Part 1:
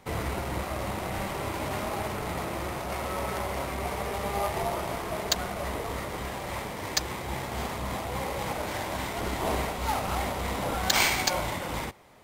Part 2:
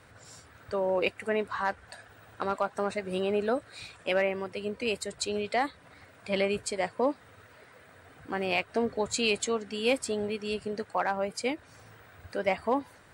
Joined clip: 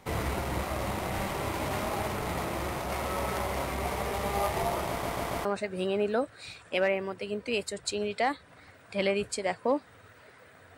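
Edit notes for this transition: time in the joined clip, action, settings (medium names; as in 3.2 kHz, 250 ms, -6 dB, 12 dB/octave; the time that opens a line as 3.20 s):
part 1
4.89 s: stutter in place 0.14 s, 4 plays
5.45 s: go over to part 2 from 2.79 s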